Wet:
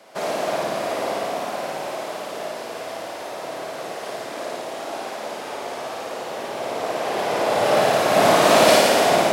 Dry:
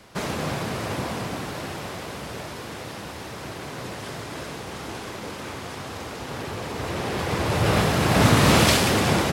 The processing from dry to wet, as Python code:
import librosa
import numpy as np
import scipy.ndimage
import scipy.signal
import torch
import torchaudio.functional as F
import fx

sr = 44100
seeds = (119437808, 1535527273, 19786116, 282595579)

p1 = scipy.signal.sosfilt(scipy.signal.butter(2, 300.0, 'highpass', fs=sr, output='sos'), x)
p2 = fx.peak_eq(p1, sr, hz=650.0, db=11.0, octaves=0.62)
p3 = p2 + fx.room_flutter(p2, sr, wall_m=9.5, rt60_s=1.2, dry=0)
y = p3 * librosa.db_to_amplitude(-2.0)